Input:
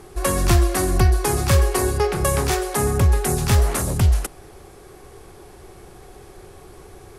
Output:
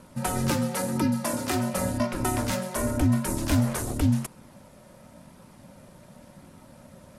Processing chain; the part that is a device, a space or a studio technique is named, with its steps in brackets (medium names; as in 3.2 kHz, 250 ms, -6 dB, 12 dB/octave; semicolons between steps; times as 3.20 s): alien voice (ring modulator 180 Hz; flange 0.92 Hz, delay 0.7 ms, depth 1.2 ms, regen -66%); 0.50–1.74 s: high-pass 170 Hz 12 dB/octave